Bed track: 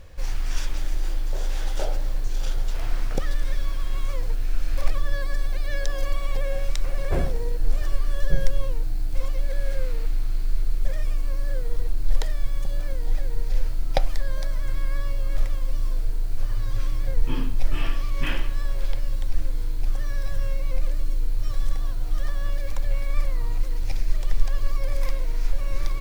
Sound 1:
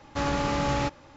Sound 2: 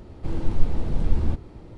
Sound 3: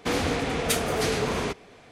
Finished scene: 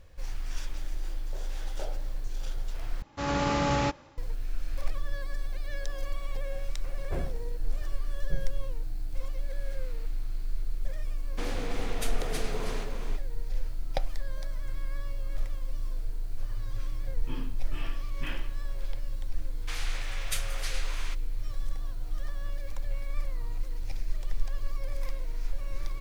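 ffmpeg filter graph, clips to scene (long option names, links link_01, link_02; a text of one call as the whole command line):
ffmpeg -i bed.wav -i cue0.wav -i cue1.wav -i cue2.wav -filter_complex "[3:a]asplit=2[link_01][link_02];[0:a]volume=-8.5dB[link_03];[1:a]dynaudnorm=framelen=100:gausssize=5:maxgain=7dB[link_04];[link_01]aecho=1:1:324:0.562[link_05];[link_02]highpass=1500[link_06];[link_03]asplit=2[link_07][link_08];[link_07]atrim=end=3.024[link_09];[link_04]atrim=end=1.16,asetpts=PTS-STARTPTS,volume=-7dB[link_10];[link_08]atrim=start=4.176[link_11];[link_05]atrim=end=1.91,asetpts=PTS-STARTPTS,volume=-11.5dB,afade=type=in:duration=0.004:curve=hsin,afade=type=out:start_time=1.906:duration=0.004:curve=hsin,adelay=11320[link_12];[link_06]atrim=end=1.91,asetpts=PTS-STARTPTS,volume=-7dB,afade=type=in:duration=0.004:curve=hsin,afade=type=out:start_time=1.906:duration=0.004:curve=hsin,adelay=19620[link_13];[link_09][link_10]acrossfade=duration=0.004:curve1=hsin:curve2=hsin[link_14];[link_14][link_11]acrossfade=duration=0.004:curve1=hsin:curve2=hsin[link_15];[link_15][link_12][link_13]amix=inputs=3:normalize=0" out.wav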